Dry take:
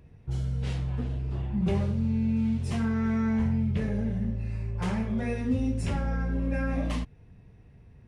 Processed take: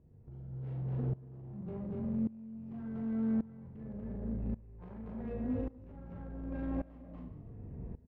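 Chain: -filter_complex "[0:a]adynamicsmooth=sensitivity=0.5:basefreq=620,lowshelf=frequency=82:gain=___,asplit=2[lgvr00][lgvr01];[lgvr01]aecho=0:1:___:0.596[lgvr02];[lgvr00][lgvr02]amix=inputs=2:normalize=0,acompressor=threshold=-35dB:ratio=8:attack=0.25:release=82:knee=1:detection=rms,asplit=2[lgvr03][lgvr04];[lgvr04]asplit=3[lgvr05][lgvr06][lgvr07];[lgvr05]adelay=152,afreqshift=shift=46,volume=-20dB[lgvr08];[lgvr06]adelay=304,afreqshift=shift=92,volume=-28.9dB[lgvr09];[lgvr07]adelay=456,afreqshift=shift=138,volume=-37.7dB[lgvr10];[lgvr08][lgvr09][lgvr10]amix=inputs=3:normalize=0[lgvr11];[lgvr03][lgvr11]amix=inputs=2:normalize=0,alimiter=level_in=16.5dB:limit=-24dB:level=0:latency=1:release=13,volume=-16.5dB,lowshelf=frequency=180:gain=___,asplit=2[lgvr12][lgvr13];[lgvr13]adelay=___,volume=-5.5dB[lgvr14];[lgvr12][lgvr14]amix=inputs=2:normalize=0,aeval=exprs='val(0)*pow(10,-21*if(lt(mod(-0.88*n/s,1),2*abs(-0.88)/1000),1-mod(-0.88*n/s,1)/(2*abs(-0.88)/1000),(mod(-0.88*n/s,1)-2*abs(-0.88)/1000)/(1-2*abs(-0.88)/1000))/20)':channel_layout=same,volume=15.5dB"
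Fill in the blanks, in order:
-2.5, 238, -5.5, 40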